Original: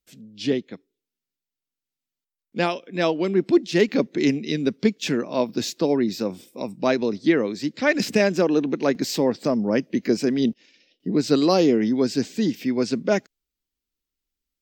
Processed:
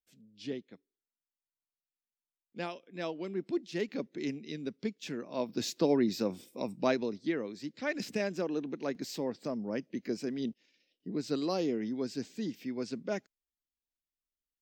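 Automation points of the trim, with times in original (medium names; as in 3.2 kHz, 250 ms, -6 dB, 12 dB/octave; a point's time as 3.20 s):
5.14 s -15.5 dB
5.77 s -6 dB
6.79 s -6 dB
7.24 s -14 dB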